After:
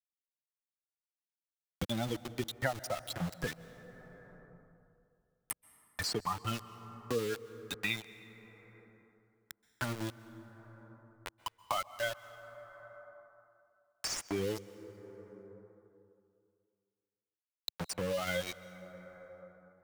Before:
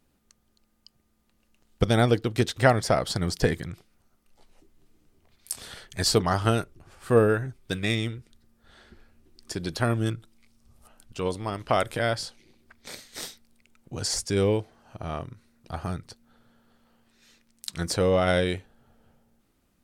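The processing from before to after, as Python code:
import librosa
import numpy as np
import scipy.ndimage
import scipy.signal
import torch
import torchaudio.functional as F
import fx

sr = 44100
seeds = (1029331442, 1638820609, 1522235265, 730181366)

p1 = fx.bin_expand(x, sr, power=3.0)
p2 = fx.over_compress(p1, sr, threshold_db=-31.0, ratio=-0.5)
p3 = p1 + F.gain(torch.from_numpy(p2), 0.5).numpy()
p4 = fx.low_shelf(p3, sr, hz=88.0, db=3.5)
p5 = p4 + fx.echo_single(p4, sr, ms=512, db=-21.0, dry=0)
p6 = np.where(np.abs(p5) >= 10.0 ** (-30.0 / 20.0), p5, 0.0)
p7 = fx.low_shelf(p6, sr, hz=380.0, db=-5.0)
p8 = fx.rev_plate(p7, sr, seeds[0], rt60_s=2.3, hf_ratio=0.45, predelay_ms=115, drr_db=18.5)
p9 = fx.band_squash(p8, sr, depth_pct=70)
y = F.gain(torch.from_numpy(p9), -6.0).numpy()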